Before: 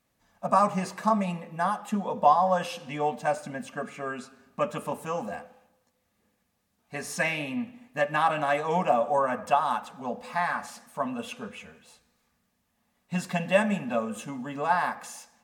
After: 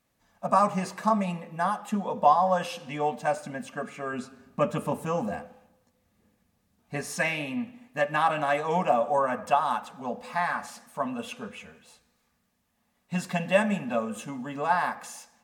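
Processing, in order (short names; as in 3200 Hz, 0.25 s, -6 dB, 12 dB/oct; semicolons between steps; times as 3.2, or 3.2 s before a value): 4.13–7.01 low shelf 360 Hz +8.5 dB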